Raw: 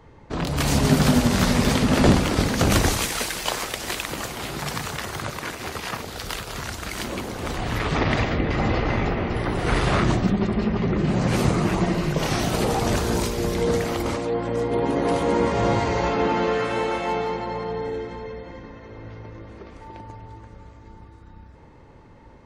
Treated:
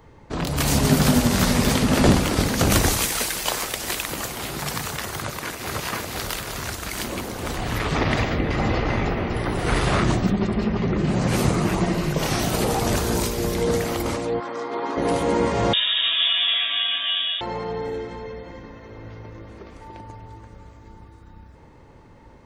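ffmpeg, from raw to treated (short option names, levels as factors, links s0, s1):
-filter_complex "[0:a]asplit=2[s0][s1];[s1]afade=t=in:st=5.17:d=0.01,afade=t=out:st=5.75:d=0.01,aecho=0:1:500|1000|1500|2000|2500|3000|3500|4000:0.794328|0.436881|0.240284|0.132156|0.072686|0.0399773|0.0219875|0.0120931[s2];[s0][s2]amix=inputs=2:normalize=0,asplit=3[s3][s4][s5];[s3]afade=t=out:st=14.39:d=0.02[s6];[s4]highpass=410,equalizer=f=520:t=q:w=4:g=-8,equalizer=f=1200:t=q:w=4:g=8,equalizer=f=2800:t=q:w=4:g=-5,lowpass=f=6100:w=0.5412,lowpass=f=6100:w=1.3066,afade=t=in:st=14.39:d=0.02,afade=t=out:st=14.96:d=0.02[s7];[s5]afade=t=in:st=14.96:d=0.02[s8];[s6][s7][s8]amix=inputs=3:normalize=0,asettb=1/sr,asplit=3[s9][s10][s11];[s9]atrim=end=15.734[s12];[s10]atrim=start=15.73:end=17.41,asetpts=PTS-STARTPTS,afade=t=in:d=0.004:c=qsin,afade=t=out:st=1.676:d=0.004:c=qsin,lowpass=f=3200:t=q:w=0.5098,lowpass=f=3200:t=q:w=0.6013,lowpass=f=3200:t=q:w=0.9,lowpass=f=3200:t=q:w=2.563,afreqshift=-3800[s13];[s11]atrim=start=17.406[s14];[s12][s13]acrossfade=d=0.004:c1=hsin:c2=qsin[s15];[s15][s14]acrossfade=d=0.004:c1=qsin:c2=hsin,highshelf=f=9200:g=9.5"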